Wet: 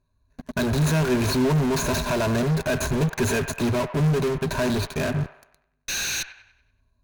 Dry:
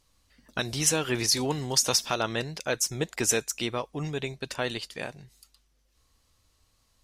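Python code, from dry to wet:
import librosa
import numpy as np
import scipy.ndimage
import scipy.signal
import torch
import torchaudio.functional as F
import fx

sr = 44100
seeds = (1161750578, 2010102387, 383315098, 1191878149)

p1 = scipy.ndimage.median_filter(x, 15, mode='constant')
p2 = fx.spec_paint(p1, sr, seeds[0], shape='noise', start_s=5.88, length_s=0.35, low_hz=1400.0, high_hz=6700.0, level_db=-40.0)
p3 = fx.ripple_eq(p2, sr, per_octave=1.5, db=16)
p4 = fx.fuzz(p3, sr, gain_db=49.0, gate_db=-53.0)
p5 = p3 + (p4 * 10.0 ** (-7.0 / 20.0))
p6 = fx.low_shelf(p5, sr, hz=250.0, db=8.0)
p7 = p6 + fx.echo_wet_bandpass(p6, sr, ms=96, feedback_pct=43, hz=1300.0, wet_db=-10.0, dry=0)
y = p7 * 10.0 ** (-7.0 / 20.0)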